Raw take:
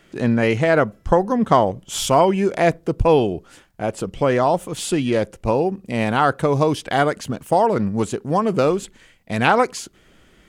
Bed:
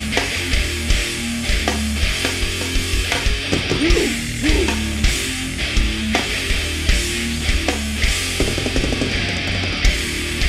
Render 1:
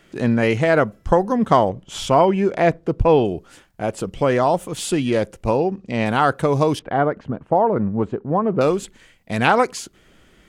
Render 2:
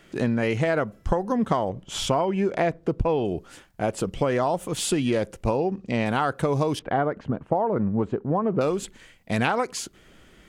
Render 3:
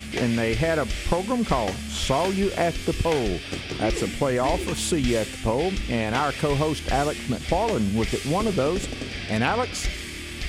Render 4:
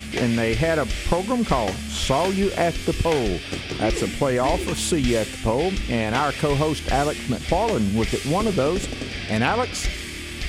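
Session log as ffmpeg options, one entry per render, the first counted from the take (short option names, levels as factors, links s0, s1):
-filter_complex "[0:a]asettb=1/sr,asplit=3[s0][s1][s2];[s0]atrim=end=1.694[s3];[s1]atrim=start=1.69:end=3.25,asetpts=PTS-STARTPTS,afade=t=in:d=0.004:c=qsin,afade=t=out:st=1.556:d=0.004:c=qsin,aemphasis=mode=reproduction:type=50fm[s4];[s2]atrim=start=3.246[s5];[s3][s4]acrossfade=d=0.004:c1=hsin:c2=qsin[s6];[s6][s5]acrossfade=d=0.004:c1=qsin:c2=hsin,asettb=1/sr,asplit=3[s7][s8][s9];[s7]atrim=end=5.574[s10];[s8]atrim=start=5.57:end=6.06,asetpts=PTS-STARTPTS,afade=t=in:d=0.004:c=qsin,afade=t=out:st=0.486:d=0.004:c=qsin,lowpass=f=6700:w=0.5412,lowpass=f=6700:w=1.3066[s11];[s9]atrim=start=6.056[s12];[s10][s11]acrossfade=d=0.004:c1=hsin:c2=qsin[s13];[s13][s12]acrossfade=d=0.004:c1=qsin:c2=hsin,asettb=1/sr,asplit=3[s14][s15][s16];[s14]atrim=end=6.794[s17];[s15]atrim=start=6.79:end=8.61,asetpts=PTS-STARTPTS,afade=t=in:d=0.004:c=qsin,afade=t=out:st=1.816:d=0.004:c=qsin,lowpass=1300[s18];[s16]atrim=start=8.606[s19];[s17][s18]acrossfade=d=0.004:c1=hsin:c2=qsin[s20];[s20][s19]acrossfade=d=0.004:c1=qsin:c2=hsin"
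-af "acompressor=threshold=0.112:ratio=10"
-filter_complex "[1:a]volume=0.237[s0];[0:a][s0]amix=inputs=2:normalize=0"
-af "volume=1.26"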